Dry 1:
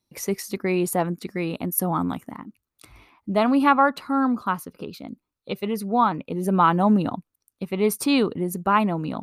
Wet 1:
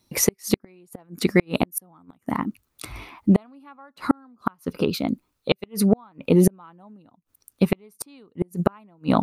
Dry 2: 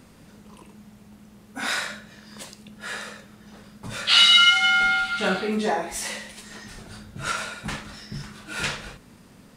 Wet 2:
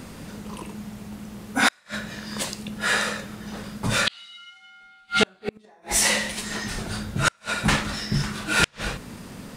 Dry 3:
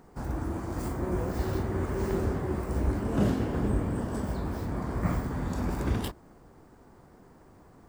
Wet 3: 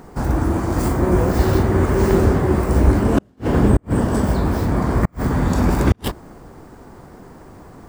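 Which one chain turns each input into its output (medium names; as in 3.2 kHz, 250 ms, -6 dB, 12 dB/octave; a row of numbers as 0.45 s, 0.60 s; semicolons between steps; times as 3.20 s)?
inverted gate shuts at -17 dBFS, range -41 dB; peak normalisation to -3 dBFS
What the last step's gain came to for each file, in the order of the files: +12.0 dB, +11.0 dB, +14.0 dB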